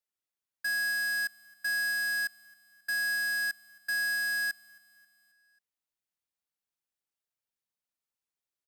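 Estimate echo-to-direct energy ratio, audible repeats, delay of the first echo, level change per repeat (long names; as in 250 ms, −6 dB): −21.5 dB, 3, 269 ms, −5.0 dB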